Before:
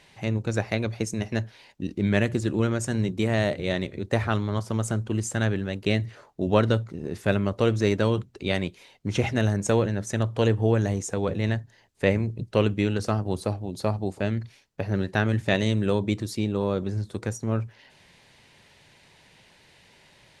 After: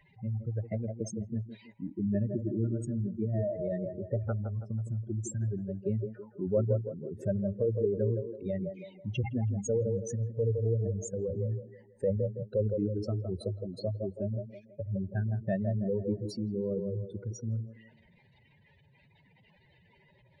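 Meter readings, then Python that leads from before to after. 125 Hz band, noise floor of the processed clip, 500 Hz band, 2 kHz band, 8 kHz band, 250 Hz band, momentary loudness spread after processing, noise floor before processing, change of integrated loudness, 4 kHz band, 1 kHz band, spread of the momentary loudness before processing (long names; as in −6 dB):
−5.5 dB, −64 dBFS, −6.0 dB, −22.5 dB, −9.5 dB, −8.0 dB, 8 LU, −57 dBFS, −7.0 dB, below −15 dB, −19.0 dB, 8 LU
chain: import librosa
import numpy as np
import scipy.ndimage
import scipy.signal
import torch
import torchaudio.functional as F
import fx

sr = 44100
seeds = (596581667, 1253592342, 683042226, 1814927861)

p1 = fx.spec_expand(x, sr, power=3.4)
p2 = p1 + fx.echo_wet_bandpass(p1, sr, ms=163, feedback_pct=40, hz=530.0, wet_db=-4.0, dry=0)
y = p2 * 10.0 ** (-6.5 / 20.0)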